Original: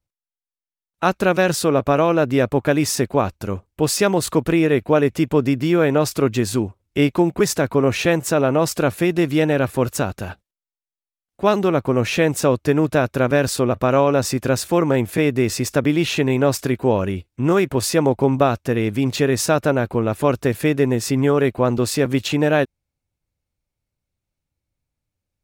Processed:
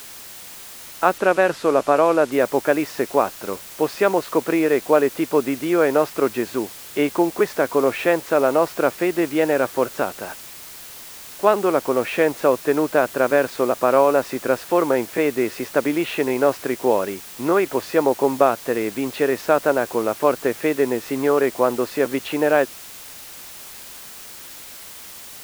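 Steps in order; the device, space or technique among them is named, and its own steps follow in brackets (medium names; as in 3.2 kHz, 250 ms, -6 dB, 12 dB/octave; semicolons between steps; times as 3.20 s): wax cylinder (band-pass 380–2000 Hz; wow and flutter 24 cents; white noise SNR 18 dB); 1.18–2.32 s: Bessel low-pass 10 kHz, order 4; trim +2 dB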